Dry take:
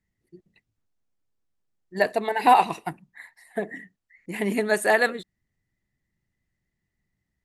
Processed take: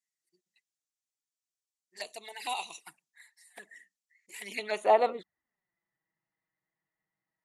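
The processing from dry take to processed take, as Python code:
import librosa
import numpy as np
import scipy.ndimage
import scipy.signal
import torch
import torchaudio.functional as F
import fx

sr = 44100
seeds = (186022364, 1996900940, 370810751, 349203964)

y = fx.env_flanger(x, sr, rest_ms=6.3, full_db=-21.0)
y = fx.filter_sweep_bandpass(y, sr, from_hz=7100.0, to_hz=990.0, start_s=4.41, end_s=4.92, q=1.4)
y = y * librosa.db_to_amplitude(5.5)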